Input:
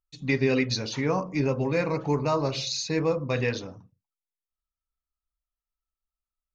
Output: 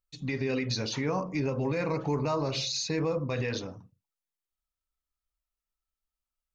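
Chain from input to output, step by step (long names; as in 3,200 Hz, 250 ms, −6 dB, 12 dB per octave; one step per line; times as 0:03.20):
brickwall limiter −21 dBFS, peak gain reduction 9.5 dB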